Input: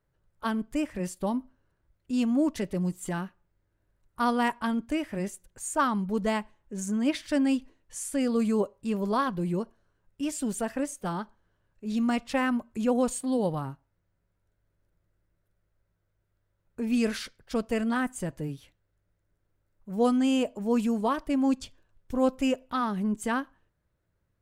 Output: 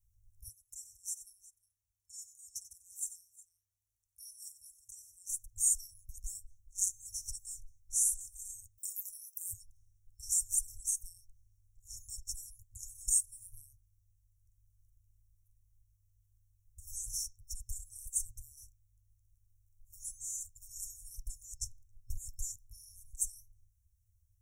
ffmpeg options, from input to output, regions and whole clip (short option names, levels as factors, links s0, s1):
-filter_complex "[0:a]asettb=1/sr,asplit=3[s0][s1][s2];[s0]atrim=end=0.484[s3];[s1]atrim=start=0.48:end=5.3,asetpts=PTS-STARTPTS,afade=t=in:d=0.004:c=qsin,afade=t=out:st=4.816:d=0.004:c=qsin,highpass=f=1200:p=1,highshelf=f=6800:g=-6.5,aecho=1:1:91|361:0.211|0.112,atrim=end_sample=212562[s4];[s2]atrim=start=5.296[s5];[s3][s4]acrossfade=d=0.004:c1=hsin:c2=qsin[s6];[s6][s5]acrossfade=d=0.004:c1=qsin:c2=hsin,asettb=1/sr,asplit=3[s7][s8][s9];[s7]atrim=end=8.784[s10];[s8]atrim=start=8.78:end=9.54,asetpts=PTS-STARTPTS,afade=t=in:d=0.004:c=qsin,afade=t=out:st=0.756:d=0.004:c=qsin,highpass=340,aemphasis=mode=production:type=riaa,acompressor=threshold=0.0112:ratio=8:attack=3.2:release=140:knee=1:detection=peak[s11];[s9]atrim=start=9.536[s12];[s10][s11]acrossfade=d=0.004:c1=hsin:c2=qsin[s13];[s13][s12]acrossfade=d=0.004:c1=qsin:c2=hsin,lowshelf=f=190:g=8.5,afftfilt=real='re*(1-between(b*sr/4096,110,5400))':imag='im*(1-between(b*sr/4096,110,5400))':win_size=4096:overlap=0.75,highshelf=f=3200:g=11,volume=0.794"